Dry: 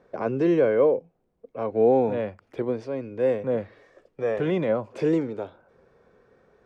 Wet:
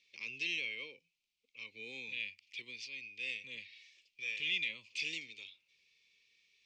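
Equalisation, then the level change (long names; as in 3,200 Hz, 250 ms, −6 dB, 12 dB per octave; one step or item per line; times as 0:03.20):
elliptic high-pass filter 2,400 Hz, stop band 40 dB
high-frequency loss of the air 160 metres
high-shelf EQ 3,200 Hz +9.5 dB
+9.5 dB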